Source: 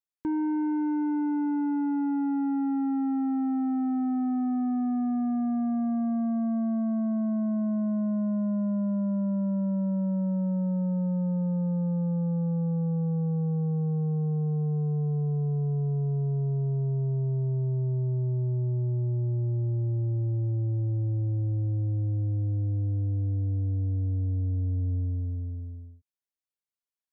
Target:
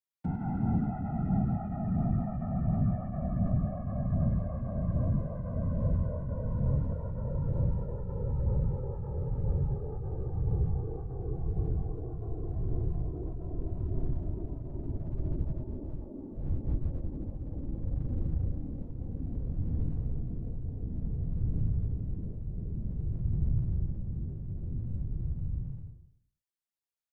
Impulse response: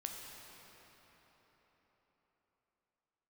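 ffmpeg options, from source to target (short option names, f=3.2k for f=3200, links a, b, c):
-af "aecho=1:1:102|204|306|408:0.473|0.175|0.0648|0.024,afreqshift=-140,afftfilt=real='hypot(re,im)*cos(2*PI*random(0))':imag='hypot(re,im)*sin(2*PI*random(1))':win_size=512:overlap=0.75,volume=2dB"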